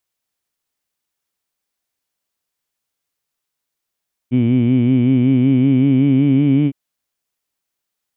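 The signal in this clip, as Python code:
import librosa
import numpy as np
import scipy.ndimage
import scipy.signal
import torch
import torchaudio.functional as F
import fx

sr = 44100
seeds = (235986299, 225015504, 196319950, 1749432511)

y = fx.vowel(sr, seeds[0], length_s=2.41, word='heed', hz=120.0, glide_st=3.0, vibrato_hz=5.3, vibrato_st=0.9)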